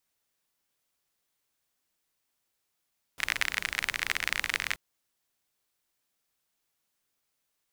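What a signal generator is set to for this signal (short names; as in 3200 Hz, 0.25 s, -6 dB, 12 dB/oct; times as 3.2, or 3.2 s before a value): rain from filtered ticks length 1.58 s, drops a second 38, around 2000 Hz, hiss -16 dB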